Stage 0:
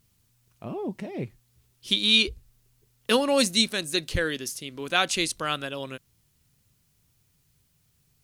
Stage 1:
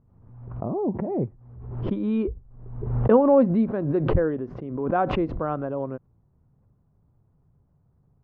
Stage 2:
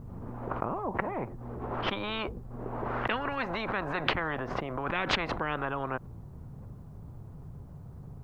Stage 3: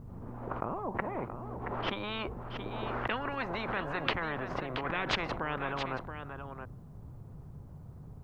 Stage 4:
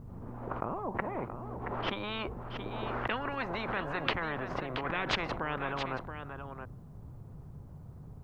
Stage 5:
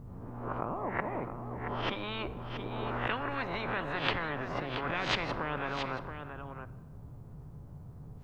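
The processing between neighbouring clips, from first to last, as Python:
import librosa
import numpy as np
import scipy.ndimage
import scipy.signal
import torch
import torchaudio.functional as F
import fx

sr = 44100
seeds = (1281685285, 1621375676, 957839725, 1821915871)

y1 = scipy.signal.sosfilt(scipy.signal.butter(4, 1000.0, 'lowpass', fs=sr, output='sos'), x)
y1 = fx.pre_swell(y1, sr, db_per_s=53.0)
y1 = y1 * 10.0 ** (6.0 / 20.0)
y2 = fx.spectral_comp(y1, sr, ratio=10.0)
y2 = y2 * 10.0 ** (-2.5 / 20.0)
y3 = y2 + 10.0 ** (-8.5 / 20.0) * np.pad(y2, (int(676 * sr / 1000.0), 0))[:len(y2)]
y3 = y3 * 10.0 ** (-3.0 / 20.0)
y4 = y3
y5 = fx.spec_swells(y4, sr, rise_s=0.34)
y5 = fx.room_shoebox(y5, sr, seeds[0], volume_m3=1100.0, walls='mixed', distance_m=0.35)
y5 = y5 * 10.0 ** (-1.5 / 20.0)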